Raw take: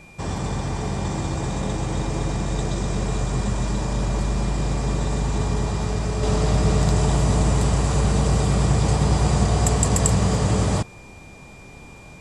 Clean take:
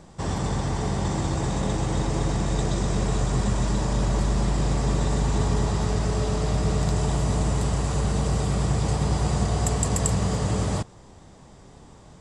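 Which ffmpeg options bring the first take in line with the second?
ffmpeg -i in.wav -af "bandreject=frequency=2400:width=30,agate=range=-21dB:threshold=-34dB,asetnsamples=nb_out_samples=441:pad=0,asendcmd='6.23 volume volume -4.5dB',volume=0dB" out.wav

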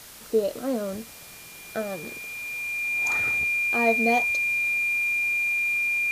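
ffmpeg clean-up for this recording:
ffmpeg -i in.wav -af "bandreject=frequency=2400:width=30,afwtdn=0.0063" out.wav

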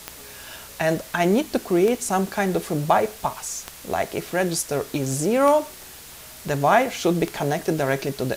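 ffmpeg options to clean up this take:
ffmpeg -i in.wav -af "adeclick=threshold=4,bandreject=frequency=61.5:width_type=h:width=4,bandreject=frequency=123:width_type=h:width=4,bandreject=frequency=184.5:width_type=h:width=4,bandreject=frequency=246:width_type=h:width=4,afftdn=noise_reduction=25:noise_floor=-42" out.wav

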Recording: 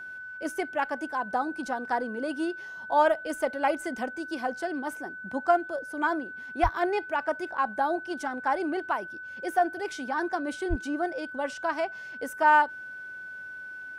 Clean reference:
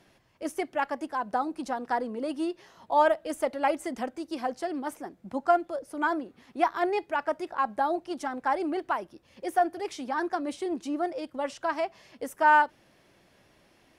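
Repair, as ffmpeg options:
ffmpeg -i in.wav -filter_complex "[0:a]bandreject=frequency=1500:width=30,asplit=3[link_01][link_02][link_03];[link_01]afade=type=out:start_time=6.62:duration=0.02[link_04];[link_02]highpass=frequency=140:width=0.5412,highpass=frequency=140:width=1.3066,afade=type=in:start_time=6.62:duration=0.02,afade=type=out:start_time=6.74:duration=0.02[link_05];[link_03]afade=type=in:start_time=6.74:duration=0.02[link_06];[link_04][link_05][link_06]amix=inputs=3:normalize=0,asplit=3[link_07][link_08][link_09];[link_07]afade=type=out:start_time=10.69:duration=0.02[link_10];[link_08]highpass=frequency=140:width=0.5412,highpass=frequency=140:width=1.3066,afade=type=in:start_time=10.69:duration=0.02,afade=type=out:start_time=10.81:duration=0.02[link_11];[link_09]afade=type=in:start_time=10.81:duration=0.02[link_12];[link_10][link_11][link_12]amix=inputs=3:normalize=0" out.wav

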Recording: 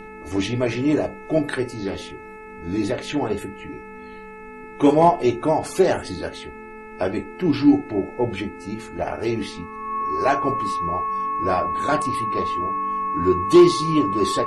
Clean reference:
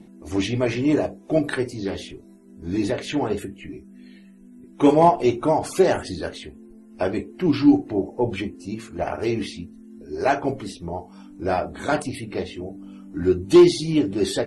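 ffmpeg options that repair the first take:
ffmpeg -i in.wav -af "bandreject=frequency=433.4:width_type=h:width=4,bandreject=frequency=866.8:width_type=h:width=4,bandreject=frequency=1300.2:width_type=h:width=4,bandreject=frequency=1733.6:width_type=h:width=4,bandreject=frequency=2167:width_type=h:width=4,bandreject=frequency=2600.4:width_type=h:width=4,bandreject=frequency=1100:width=30,agate=range=-21dB:threshold=-31dB" out.wav

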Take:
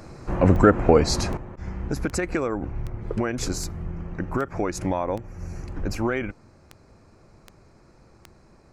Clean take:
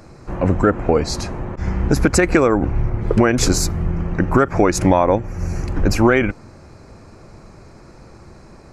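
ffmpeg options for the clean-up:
ffmpeg -i in.wav -af "adeclick=threshold=4,asetnsamples=nb_out_samples=441:pad=0,asendcmd='1.37 volume volume 11.5dB',volume=0dB" out.wav

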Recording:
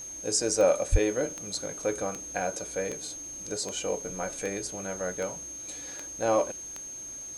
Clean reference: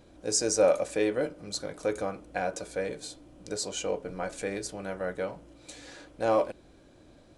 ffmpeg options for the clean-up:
ffmpeg -i in.wav -filter_complex "[0:a]adeclick=threshold=4,bandreject=frequency=6400:width=30,asplit=3[link_01][link_02][link_03];[link_01]afade=type=out:start_time=0.91:duration=0.02[link_04];[link_02]highpass=frequency=140:width=0.5412,highpass=frequency=140:width=1.3066,afade=type=in:start_time=0.91:duration=0.02,afade=type=out:start_time=1.03:duration=0.02[link_05];[link_03]afade=type=in:start_time=1.03:duration=0.02[link_06];[link_04][link_05][link_06]amix=inputs=3:normalize=0,afwtdn=0.002" out.wav

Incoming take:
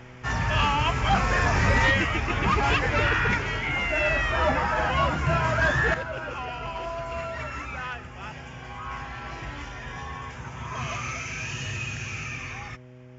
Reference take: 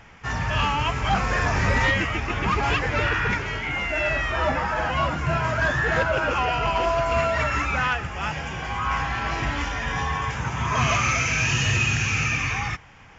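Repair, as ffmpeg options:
ffmpeg -i in.wav -af "bandreject=frequency=125.5:width_type=h:width=4,bandreject=frequency=251:width_type=h:width=4,bandreject=frequency=376.5:width_type=h:width=4,bandreject=frequency=502:width_type=h:width=4,bandreject=frequency=627.5:width_type=h:width=4,asetnsamples=nb_out_samples=441:pad=0,asendcmd='5.94 volume volume 10.5dB',volume=0dB" out.wav

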